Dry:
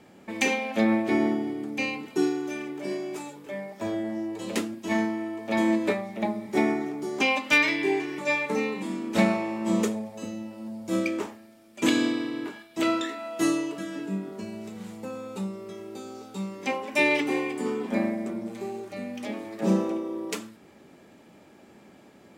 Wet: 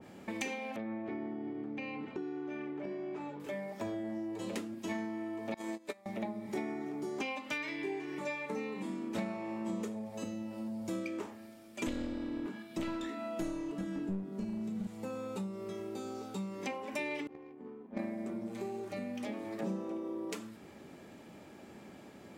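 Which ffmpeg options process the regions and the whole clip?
ffmpeg -i in.wav -filter_complex "[0:a]asettb=1/sr,asplit=3[link_01][link_02][link_03];[link_01]atrim=end=0.764[link_04];[link_02]atrim=start=0.76:end=3.4,asetpts=PTS-STARTPTS,afade=type=in:duration=0.004:curve=qsin,afade=type=out:start_time=2.636:duration=0.004:curve=qsin,lowpass=2500,acompressor=threshold=-36dB:ratio=2.5:attack=3.2:release=140:knee=1:detection=peak[link_05];[link_03]atrim=start=3.396[link_06];[link_04][link_05]acrossfade=duration=0.004:curve1=hsin:curve2=qsin[link_07];[link_07][link_06]acrossfade=duration=0.004:curve1=qsin:curve2=hsin,asettb=1/sr,asplit=3[link_08][link_09][link_10];[link_08]atrim=end=5.544[link_11];[link_09]atrim=start=5.54:end=6.06,asetpts=PTS-STARTPTS,afade=type=in:duration=0.004:curve=qsin,afade=type=out:start_time=0.516:duration=0.004:curve=qsin,agate=range=-23dB:threshold=-22dB:ratio=16:release=100:detection=peak,bass=frequency=250:gain=-10,treble=frequency=4000:gain=11[link_12];[link_10]atrim=start=6.056[link_13];[link_11][link_12]acrossfade=duration=0.004:curve1=hsin:curve2=qsin[link_14];[link_14][link_13]acrossfade=duration=0.004:curve1=qsin:curve2=hsin,asettb=1/sr,asplit=3[link_15][link_16][link_17];[link_15]atrim=end=11.874[link_18];[link_16]atrim=start=11.87:end=14.87,asetpts=PTS-STARTPTS,afade=type=in:duration=0.004:curve=qsin,afade=type=out:start_time=2.996:duration=0.004:curve=qsin,equalizer=frequency=200:width_type=o:width=1.1:gain=12,aeval=exprs='clip(val(0),-1,0.0562)':channel_layout=same[link_19];[link_17]atrim=start=14.866[link_20];[link_18][link_19]acrossfade=duration=0.004:curve1=hsin:curve2=qsin[link_21];[link_21][link_20]acrossfade=duration=0.004:curve1=qsin:curve2=hsin,asettb=1/sr,asplit=3[link_22][link_23][link_24];[link_22]atrim=end=17.274[link_25];[link_23]atrim=start=17.27:end=17.99,asetpts=PTS-STARTPTS,afade=type=in:duration=0.004:curve=qsin,afade=type=out:start_time=0.716:duration=0.004:curve=qsin,agate=range=-19dB:threshold=-23dB:ratio=16:release=100:detection=peak,adynamicsmooth=sensitivity=7.5:basefreq=990[link_26];[link_24]atrim=start=17.986[link_27];[link_25][link_26]acrossfade=duration=0.004:curve1=hsin:curve2=qsin[link_28];[link_28][link_27]acrossfade=duration=0.004:curve1=qsin:curve2=hsin,equalizer=frequency=79:width_type=o:width=1.9:gain=3,acompressor=threshold=-37dB:ratio=4,adynamicequalizer=threshold=0.00282:dfrequency=1900:dqfactor=0.7:tfrequency=1900:tqfactor=0.7:attack=5:release=100:ratio=0.375:range=1.5:mode=cutabove:tftype=highshelf" out.wav

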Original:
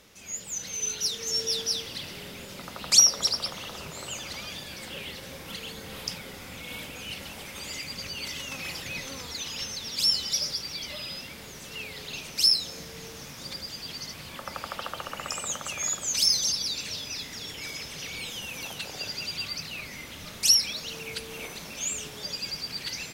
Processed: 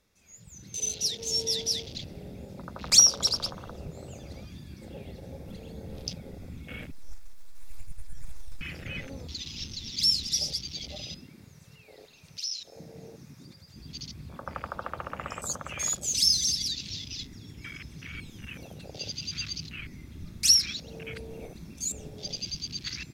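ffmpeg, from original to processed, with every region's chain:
ffmpeg -i in.wav -filter_complex "[0:a]asettb=1/sr,asplit=3[link_01][link_02][link_03];[link_01]atrim=end=6.914[link_04];[link_02]atrim=start=6.91:end=8.61,asetpts=PTS-STARTPTS,afade=type=in:duration=0.004:curve=qsin,afade=type=out:start_time=1.696:duration=0.004:curve=qsin,highpass=frequency=1100:poles=1,aeval=exprs='abs(val(0))':channel_layout=same[link_05];[link_03]atrim=start=8.606[link_06];[link_04][link_05]acrossfade=duration=0.004:curve1=hsin:curve2=qsin[link_07];[link_07][link_06]acrossfade=duration=0.004:curve1=qsin:curve2=hsin,asettb=1/sr,asplit=3[link_08][link_09][link_10];[link_08]atrim=end=11.254[link_11];[link_09]atrim=start=11.25:end=13.76,asetpts=PTS-STARTPTS,afade=type=in:duration=0.004:curve=qsin,afade=type=out:start_time=2.506:duration=0.004:curve=qsin,lowshelf=frequency=100:gain=-10,bandreject=frequency=3400:width=19,acompressor=threshold=-37dB:ratio=2:attack=3.2:release=140:knee=1:detection=peak[link_12];[link_10]atrim=start=13.756[link_13];[link_11][link_12]acrossfade=duration=0.004:curve1=hsin:curve2=qsin[link_14];[link_14][link_13]acrossfade=duration=0.004:curve1=qsin:curve2=hsin,bandreject=frequency=3000:width=8.2,afwtdn=0.0141,lowshelf=frequency=110:gain=11" out.wav

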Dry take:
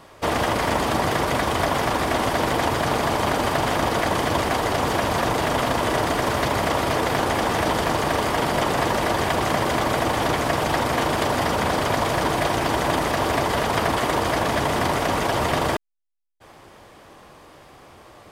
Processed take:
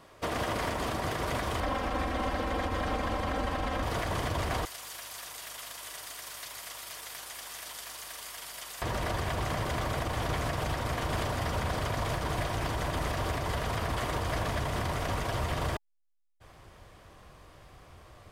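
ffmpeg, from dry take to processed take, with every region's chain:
ffmpeg -i in.wav -filter_complex "[0:a]asettb=1/sr,asplit=3[link_01][link_02][link_03];[link_01]atrim=end=1.604[link_04];[link_02]atrim=start=1.6:end=3.83,asetpts=PTS-STARTPTS,afade=type=in:duration=0.004:curve=qsin,afade=type=out:start_time=2.226:duration=0.004:curve=qsin,highshelf=frequency=4800:gain=-12,aecho=1:1:3.8:0.83,atrim=end_sample=98343[link_05];[link_03]atrim=start=3.826[link_06];[link_04][link_05]acrossfade=duration=0.004:curve1=hsin:curve2=qsin[link_07];[link_07][link_06]acrossfade=duration=0.004:curve1=qsin:curve2=hsin,asettb=1/sr,asplit=3[link_08][link_09][link_10];[link_08]atrim=end=4.654[link_11];[link_09]atrim=start=4.65:end=8.82,asetpts=PTS-STARTPTS,afade=type=in:duration=0.004:curve=qsin,afade=type=out:start_time=4.166:duration=0.004:curve=qsin,aderivative,aeval=exprs='val(0)+0.000447*(sin(2*PI*50*n/s)+sin(2*PI*2*50*n/s)/2+sin(2*PI*3*50*n/s)/3+sin(2*PI*4*50*n/s)/4+sin(2*PI*5*50*n/s)/5)':channel_layout=same[link_12];[link_10]atrim=start=8.816[link_13];[link_11][link_12]acrossfade=duration=0.004:curve1=hsin:curve2=qsin[link_14];[link_14][link_13]acrossfade=duration=0.004:curve1=qsin:curve2=hsin,bandreject=frequency=850:width=12,asubboost=boost=4:cutoff=120,alimiter=limit=-14.5dB:level=0:latency=1:release=95,volume=-7.5dB" out.wav

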